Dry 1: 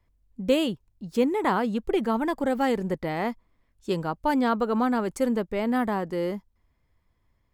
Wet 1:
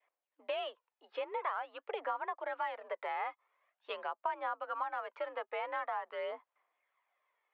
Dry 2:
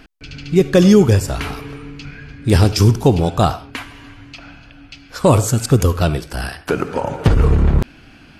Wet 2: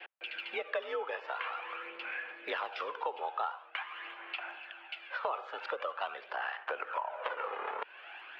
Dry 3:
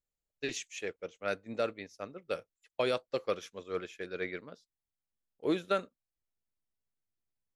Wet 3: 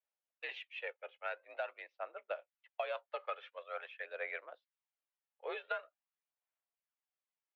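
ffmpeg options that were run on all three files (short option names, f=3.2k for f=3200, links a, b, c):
-af "adynamicequalizer=threshold=0.0158:dfrequency=1100:dqfactor=1.8:tfrequency=1100:tqfactor=1.8:attack=5:release=100:ratio=0.375:range=2.5:mode=boostabove:tftype=bell,highpass=f=550:t=q:w=0.5412,highpass=f=550:t=q:w=1.307,lowpass=f=3.1k:t=q:w=0.5176,lowpass=f=3.1k:t=q:w=0.7071,lowpass=f=3.1k:t=q:w=1.932,afreqshift=57,aphaser=in_gain=1:out_gain=1:delay=2.4:decay=0.44:speed=0.46:type=sinusoidal,acompressor=threshold=-35dB:ratio=4,volume=-1dB"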